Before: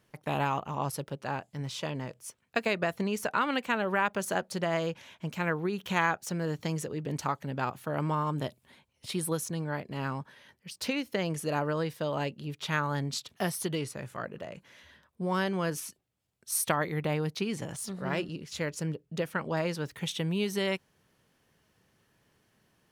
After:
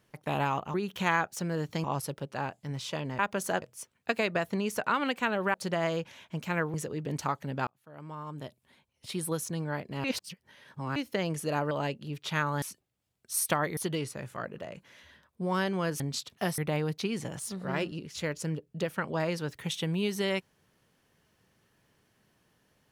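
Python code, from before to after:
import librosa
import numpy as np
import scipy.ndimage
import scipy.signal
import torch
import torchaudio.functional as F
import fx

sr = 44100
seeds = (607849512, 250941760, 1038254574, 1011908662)

y = fx.edit(x, sr, fx.move(start_s=4.01, length_s=0.43, to_s=2.09),
    fx.move(start_s=5.64, length_s=1.1, to_s=0.74),
    fx.fade_in_span(start_s=7.67, length_s=1.87),
    fx.reverse_span(start_s=10.04, length_s=0.92),
    fx.cut(start_s=11.71, length_s=0.37),
    fx.swap(start_s=12.99, length_s=0.58, other_s=15.8, other_length_s=1.15), tone=tone)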